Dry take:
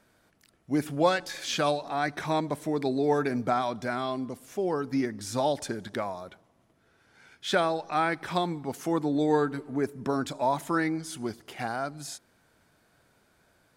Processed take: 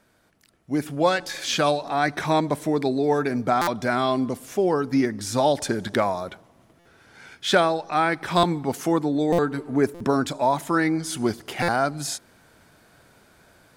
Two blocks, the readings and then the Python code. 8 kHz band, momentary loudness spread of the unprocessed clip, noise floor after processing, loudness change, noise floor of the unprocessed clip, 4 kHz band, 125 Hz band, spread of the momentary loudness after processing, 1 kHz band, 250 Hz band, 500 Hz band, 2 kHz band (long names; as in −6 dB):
+7.5 dB, 10 LU, −59 dBFS, +5.5 dB, −67 dBFS, +6.5 dB, +6.0 dB, 5 LU, +6.0 dB, +5.5 dB, +5.5 dB, +6.0 dB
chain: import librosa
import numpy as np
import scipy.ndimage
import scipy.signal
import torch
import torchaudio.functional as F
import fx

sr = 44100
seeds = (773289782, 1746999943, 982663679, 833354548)

y = fx.rider(x, sr, range_db=4, speed_s=0.5)
y = np.clip(10.0 ** (14.0 / 20.0) * y, -1.0, 1.0) / 10.0 ** (14.0 / 20.0)
y = fx.buffer_glitch(y, sr, at_s=(3.61, 6.79, 8.37, 9.32, 9.94, 11.62), block=256, repeats=10)
y = F.gain(torch.from_numpy(y), 6.0).numpy()